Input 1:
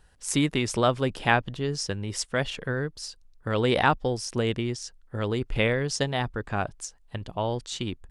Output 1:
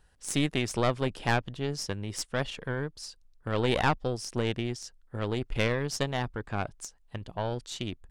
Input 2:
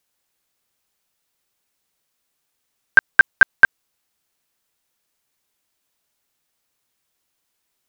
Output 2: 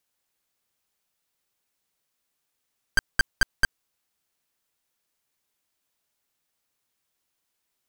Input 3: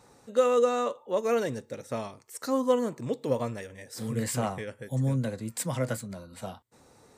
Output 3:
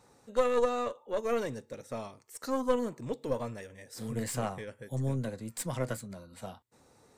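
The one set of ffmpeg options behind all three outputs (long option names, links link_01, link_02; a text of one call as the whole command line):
ffmpeg -i in.wav -af "aeval=exprs='(tanh(6.31*val(0)+0.75)-tanh(0.75))/6.31':channel_layout=same" out.wav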